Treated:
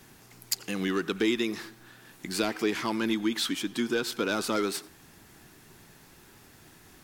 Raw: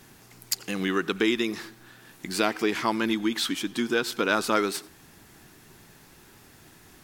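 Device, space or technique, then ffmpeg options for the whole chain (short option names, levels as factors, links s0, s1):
one-band saturation: -filter_complex "[0:a]acrossover=split=540|3000[s0][s1][s2];[s1]asoftclip=type=tanh:threshold=0.0398[s3];[s0][s3][s2]amix=inputs=3:normalize=0,volume=0.841"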